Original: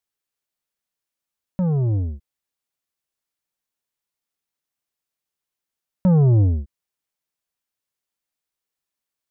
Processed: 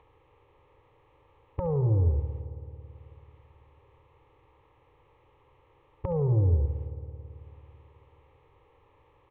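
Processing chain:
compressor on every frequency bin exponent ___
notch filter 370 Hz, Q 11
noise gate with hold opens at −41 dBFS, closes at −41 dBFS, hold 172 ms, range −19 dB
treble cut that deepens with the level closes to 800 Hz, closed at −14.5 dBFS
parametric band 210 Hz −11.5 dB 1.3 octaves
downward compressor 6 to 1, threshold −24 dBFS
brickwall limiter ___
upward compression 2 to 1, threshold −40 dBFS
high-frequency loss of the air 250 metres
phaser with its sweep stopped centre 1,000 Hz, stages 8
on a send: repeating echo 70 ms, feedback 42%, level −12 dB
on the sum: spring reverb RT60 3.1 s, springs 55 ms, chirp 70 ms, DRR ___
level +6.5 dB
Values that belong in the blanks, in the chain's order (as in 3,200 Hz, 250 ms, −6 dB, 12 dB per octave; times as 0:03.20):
0.6, −19.5 dBFS, 10 dB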